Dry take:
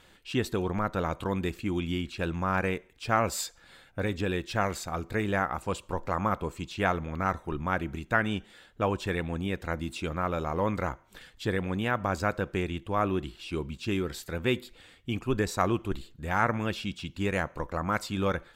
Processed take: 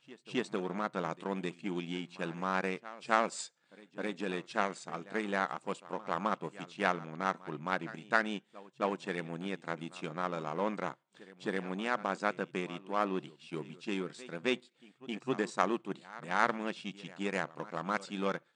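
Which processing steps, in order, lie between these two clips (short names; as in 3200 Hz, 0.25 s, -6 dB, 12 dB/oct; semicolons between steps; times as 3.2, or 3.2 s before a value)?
power-law curve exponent 1.4; FFT band-pass 130–9500 Hz; reverse echo 0.265 s -19 dB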